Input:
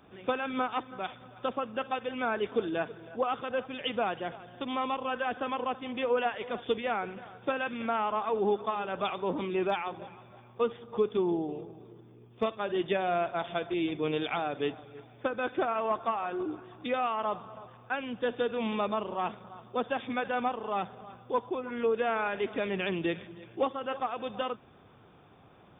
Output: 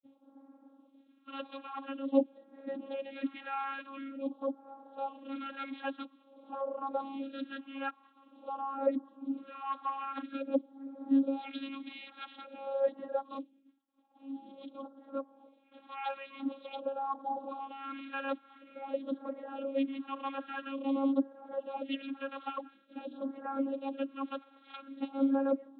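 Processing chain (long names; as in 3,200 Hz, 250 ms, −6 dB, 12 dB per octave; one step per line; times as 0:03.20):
played backwards from end to start
all-pass phaser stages 2, 0.48 Hz, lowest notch 370–2,800 Hz
channel vocoder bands 32, saw 273 Hz
downward expander −56 dBFS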